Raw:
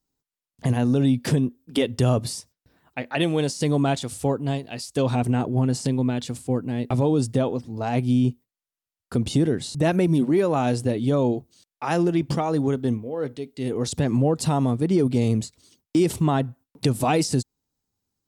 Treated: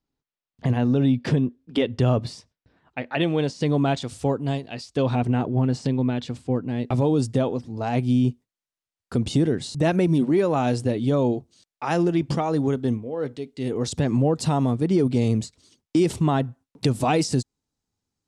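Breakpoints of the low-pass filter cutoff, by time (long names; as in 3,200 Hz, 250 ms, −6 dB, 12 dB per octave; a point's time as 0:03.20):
0:03.54 3,900 Hz
0:04.54 8,500 Hz
0:04.87 4,300 Hz
0:06.55 4,300 Hz
0:07.03 8,300 Hz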